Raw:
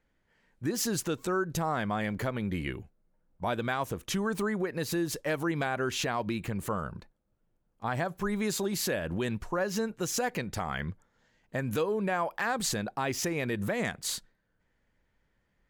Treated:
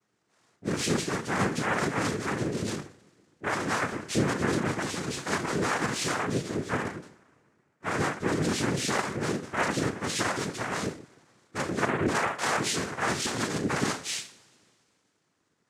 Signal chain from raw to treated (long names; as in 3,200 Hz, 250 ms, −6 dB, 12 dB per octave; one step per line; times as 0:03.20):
coupled-rooms reverb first 0.37 s, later 2.3 s, from −28 dB, DRR −8.5 dB
cochlear-implant simulation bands 3
level −6.5 dB